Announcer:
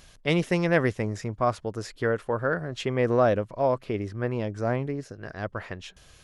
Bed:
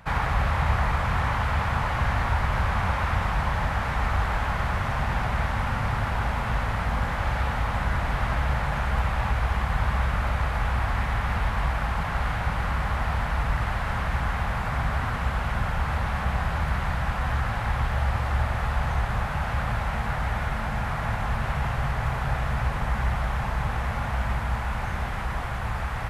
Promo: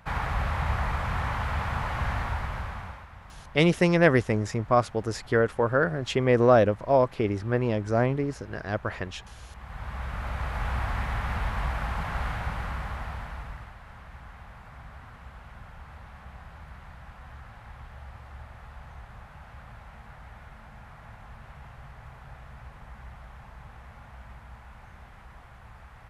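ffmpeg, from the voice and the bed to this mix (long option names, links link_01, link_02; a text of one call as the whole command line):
ffmpeg -i stem1.wav -i stem2.wav -filter_complex "[0:a]adelay=3300,volume=3dB[link_01];[1:a]volume=14dB,afade=type=out:start_time=2.12:duration=0.95:silence=0.125893,afade=type=in:start_time=9.5:duration=1.23:silence=0.11885,afade=type=out:start_time=12.22:duration=1.52:silence=0.16788[link_02];[link_01][link_02]amix=inputs=2:normalize=0" out.wav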